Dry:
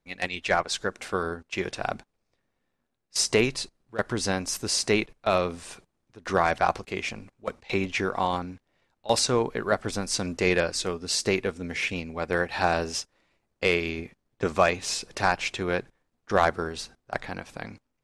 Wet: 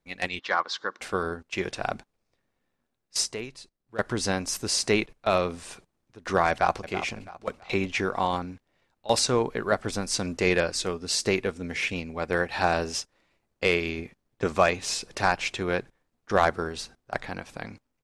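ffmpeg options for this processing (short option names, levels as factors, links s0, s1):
-filter_complex "[0:a]asettb=1/sr,asplit=3[s0][s1][s2];[s0]atrim=end=0.394[s3];[s1]atrim=start=0.39:end=1.01,asetpts=PTS-STARTPTS,afade=t=in:d=0.004:c=qsin,afade=t=out:st=0.616:d=0.004:c=qsin,highpass=360,equalizer=f=410:t=q:w=4:g=-6,equalizer=f=660:t=q:w=4:g=-9,equalizer=f=1100:t=q:w=4:g=7,equalizer=f=2500:t=q:w=4:g=-10,lowpass=f=5100:w=0.5412,lowpass=f=5100:w=1.3066[s4];[s2]atrim=start=1.006[s5];[s3][s4]acrossfade=d=0.004:c1=hsin:c2=qsin[s6];[s6][s5]acrossfade=d=0.004:c1=qsin:c2=hsin,asplit=2[s7][s8];[s8]afade=t=in:st=6.5:d=0.01,afade=t=out:st=6.91:d=0.01,aecho=0:1:330|660|990|1320:0.266073|0.0931254|0.0325939|0.0114079[s9];[s7][s9]amix=inputs=2:normalize=0,asplit=3[s10][s11][s12];[s10]atrim=end=3.34,asetpts=PTS-STARTPTS,afade=t=out:st=3.17:d=0.17:silence=0.211349[s13];[s11]atrim=start=3.34:end=3.83,asetpts=PTS-STARTPTS,volume=0.211[s14];[s12]atrim=start=3.83,asetpts=PTS-STARTPTS,afade=t=in:d=0.17:silence=0.211349[s15];[s13][s14][s15]concat=n=3:v=0:a=1"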